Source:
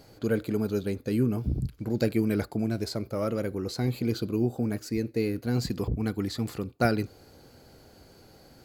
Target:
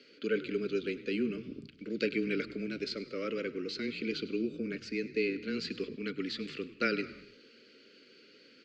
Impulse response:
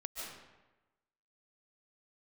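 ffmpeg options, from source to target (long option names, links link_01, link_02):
-filter_complex "[0:a]highpass=frequency=340:width=0.5412,highpass=frequency=340:width=1.3066,equalizer=frequency=350:width_type=q:width=4:gain=-9,equalizer=frequency=950:width_type=q:width=4:gain=-6,equalizer=frequency=1800:width_type=q:width=4:gain=-4,equalizer=frequency=2700:width_type=q:width=4:gain=4,equalizer=frequency=3900:width_type=q:width=4:gain=-5,lowpass=frequency=4100:width=0.5412,lowpass=frequency=4100:width=1.3066,afreqshift=-15,asuperstop=centerf=810:order=4:qfactor=0.57,asplit=4[link_01][link_02][link_03][link_04];[link_02]adelay=101,afreqshift=-62,volume=-17dB[link_05];[link_03]adelay=202,afreqshift=-124,volume=-25.2dB[link_06];[link_04]adelay=303,afreqshift=-186,volume=-33.4dB[link_07];[link_01][link_05][link_06][link_07]amix=inputs=4:normalize=0,asplit=2[link_08][link_09];[1:a]atrim=start_sample=2205,afade=type=out:start_time=0.39:duration=0.01,atrim=end_sample=17640[link_10];[link_09][link_10]afir=irnorm=-1:irlink=0,volume=-16dB[link_11];[link_08][link_11]amix=inputs=2:normalize=0,volume=5.5dB"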